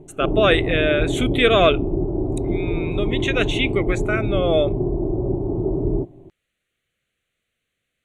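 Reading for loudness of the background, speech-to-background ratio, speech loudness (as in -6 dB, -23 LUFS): -24.0 LUFS, 3.5 dB, -20.5 LUFS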